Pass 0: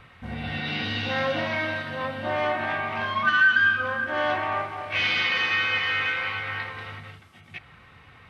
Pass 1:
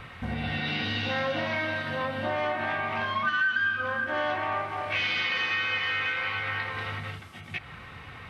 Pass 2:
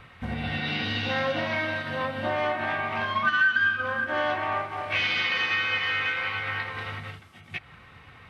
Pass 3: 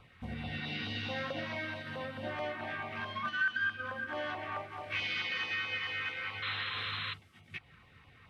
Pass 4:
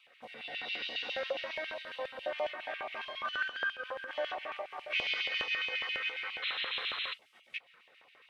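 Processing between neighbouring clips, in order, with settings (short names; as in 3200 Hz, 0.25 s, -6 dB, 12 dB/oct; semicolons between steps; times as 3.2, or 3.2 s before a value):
compressor 2.5:1, threshold -38 dBFS, peak gain reduction 15 dB; gain +7 dB
upward expander 1.5:1, over -44 dBFS; gain +4.5 dB
LFO notch saw down 4.6 Hz 490–1900 Hz; painted sound noise, 6.42–7.14, 1000–4200 Hz -30 dBFS; gain -8.5 dB
LFO high-pass square 7.3 Hz 540–2700 Hz; gain -1.5 dB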